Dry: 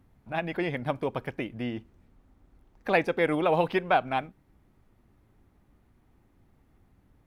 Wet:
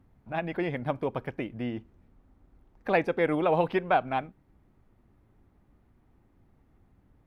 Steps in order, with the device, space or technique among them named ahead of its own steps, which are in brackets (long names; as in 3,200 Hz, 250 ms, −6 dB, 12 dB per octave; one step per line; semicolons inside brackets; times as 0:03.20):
behind a face mask (high-shelf EQ 2,800 Hz −8 dB)